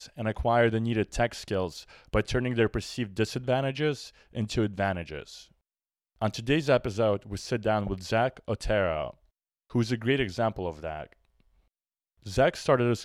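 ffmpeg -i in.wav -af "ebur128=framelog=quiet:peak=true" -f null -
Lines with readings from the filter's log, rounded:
Integrated loudness:
  I:         -28.5 LUFS
  Threshold: -39.0 LUFS
Loudness range:
  LRA:         3.4 LU
  Threshold: -49.8 LUFS
  LRA low:   -31.7 LUFS
  LRA high:  -28.3 LUFS
True peak:
  Peak:      -11.1 dBFS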